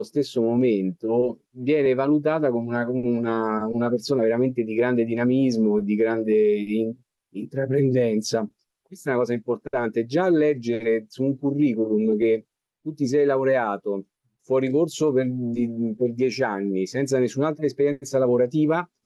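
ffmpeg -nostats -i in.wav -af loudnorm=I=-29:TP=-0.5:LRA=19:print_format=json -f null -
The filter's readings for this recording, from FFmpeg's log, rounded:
"input_i" : "-23.1",
"input_tp" : "-10.4",
"input_lra" : "1.5",
"input_thresh" : "-33.3",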